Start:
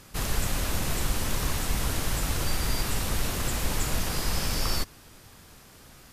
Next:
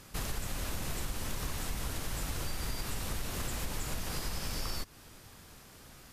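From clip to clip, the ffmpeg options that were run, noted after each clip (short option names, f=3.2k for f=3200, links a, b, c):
-af "acompressor=threshold=-30dB:ratio=4,volume=-2.5dB"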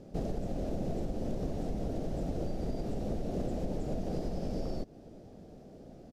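-af "firequalizer=gain_entry='entry(110,0);entry(180,9);entry(670,9);entry(1000,-14);entry(2200,-16);entry(5600,-14);entry(8600,-22);entry(12000,-26)':delay=0.05:min_phase=1"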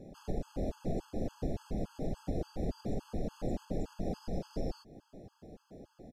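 -af "afftfilt=real='re*gt(sin(2*PI*3.5*pts/sr)*(1-2*mod(floor(b*sr/1024/860),2)),0)':imag='im*gt(sin(2*PI*3.5*pts/sr)*(1-2*mod(floor(b*sr/1024/860),2)),0)':win_size=1024:overlap=0.75,volume=1dB"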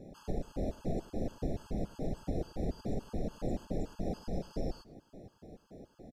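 -af "aecho=1:1:101:0.0944"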